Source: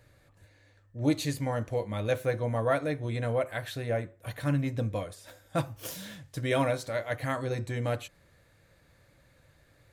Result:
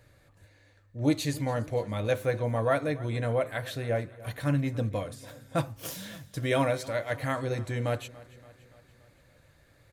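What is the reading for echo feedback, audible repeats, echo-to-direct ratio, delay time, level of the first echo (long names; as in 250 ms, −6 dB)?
58%, 4, −18.0 dB, 286 ms, −20.0 dB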